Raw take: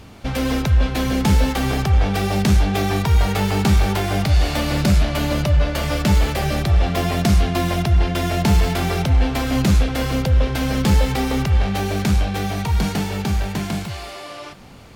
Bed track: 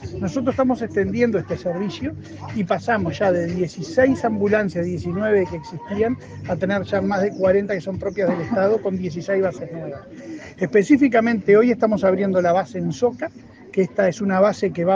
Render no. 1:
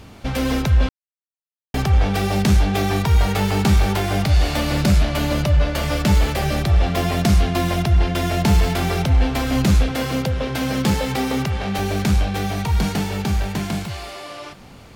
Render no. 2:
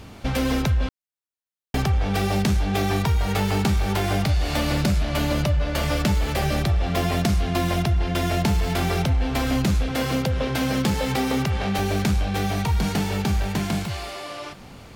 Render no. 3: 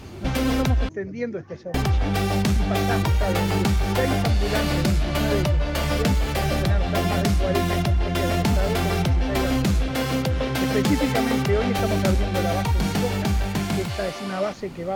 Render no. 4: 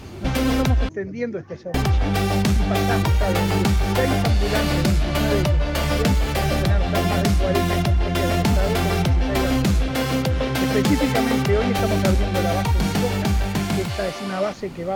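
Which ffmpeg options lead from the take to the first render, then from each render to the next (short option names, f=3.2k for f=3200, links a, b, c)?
-filter_complex "[0:a]asettb=1/sr,asplit=3[a][b][c];[a]atrim=end=9.914[d];[b]atrim=start=9.91:end=11.79,asetpts=PTS-STARTPTS,afade=t=in:d=0.004:c=qsin,afade=t=out:st=1.876:d=0.004:c=qsin,highpass=110[e];[c]atrim=start=11.786[f];[d][e]acrossfade=d=0.004:c1=hsin:c2=qsin[g];[g][f]acrossfade=d=0.004:c1=qsin:c2=hsin,asplit=3[h][i][j];[h]atrim=end=0.89,asetpts=PTS-STARTPTS,afade=t=out:st=0.886:d=0.004:c=hsin[k];[i]atrim=start=0.89:end=1.74,asetpts=PTS-STARTPTS,volume=0[l];[j]atrim=start=1.74,asetpts=PTS-STARTPTS,afade=t=in:d=0.004:c=hsin[m];[k][l][m]concat=n=3:v=0:a=1"
-af "acompressor=threshold=-18dB:ratio=6"
-filter_complex "[1:a]volume=-10dB[a];[0:a][a]amix=inputs=2:normalize=0"
-af "volume=2dB"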